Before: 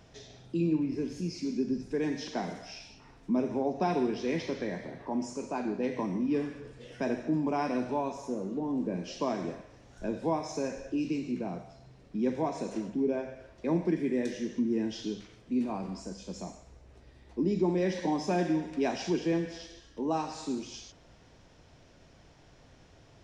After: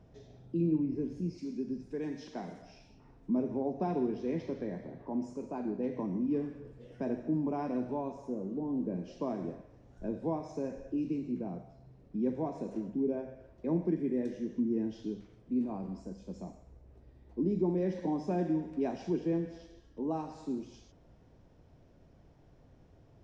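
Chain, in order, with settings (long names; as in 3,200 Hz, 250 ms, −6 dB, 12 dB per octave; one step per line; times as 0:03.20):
tilt shelving filter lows +9 dB, about 1,100 Hz, from 0:01.37 lows +3.5 dB, from 0:02.61 lows +8 dB
level −9 dB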